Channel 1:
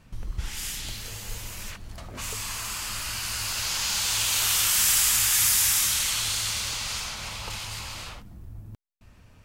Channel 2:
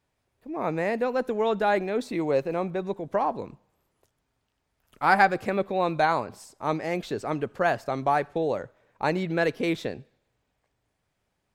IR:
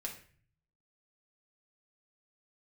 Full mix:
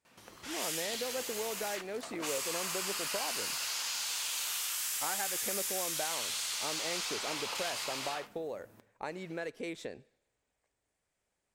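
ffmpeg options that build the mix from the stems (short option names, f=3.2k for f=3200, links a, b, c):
-filter_complex "[0:a]highpass=400,acompressor=threshold=-32dB:ratio=12,adelay=50,volume=-3dB,asplit=2[a][b];[b]volume=-6.5dB[c];[1:a]acompressor=threshold=-29dB:ratio=6,equalizer=f=125:t=o:w=1:g=-5,equalizer=f=500:t=o:w=1:g=4,equalizer=f=2k:t=o:w=1:g=4,equalizer=f=8k:t=o:w=1:g=12,volume=-9.5dB[d];[2:a]atrim=start_sample=2205[e];[c][e]afir=irnorm=-1:irlink=0[f];[a][d][f]amix=inputs=3:normalize=0"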